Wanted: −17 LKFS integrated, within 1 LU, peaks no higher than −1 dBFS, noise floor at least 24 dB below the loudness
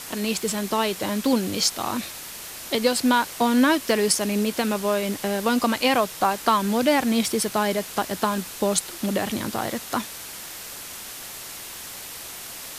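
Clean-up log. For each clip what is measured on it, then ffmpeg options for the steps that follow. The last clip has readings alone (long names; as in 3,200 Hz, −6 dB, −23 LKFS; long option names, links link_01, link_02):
background noise floor −38 dBFS; target noise floor −47 dBFS; integrated loudness −23.0 LKFS; sample peak −5.0 dBFS; target loudness −17.0 LKFS
→ -af "afftdn=noise_reduction=9:noise_floor=-38"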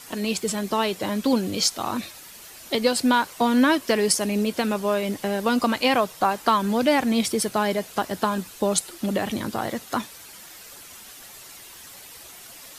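background noise floor −44 dBFS; target noise floor −48 dBFS
→ -af "afftdn=noise_reduction=6:noise_floor=-44"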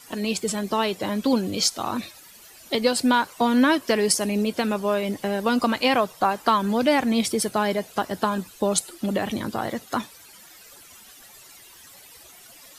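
background noise floor −48 dBFS; integrated loudness −23.5 LKFS; sample peak −5.0 dBFS; target loudness −17.0 LKFS
→ -af "volume=6.5dB,alimiter=limit=-1dB:level=0:latency=1"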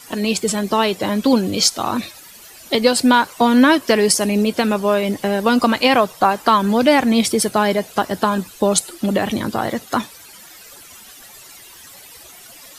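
integrated loudness −17.0 LKFS; sample peak −1.0 dBFS; background noise floor −42 dBFS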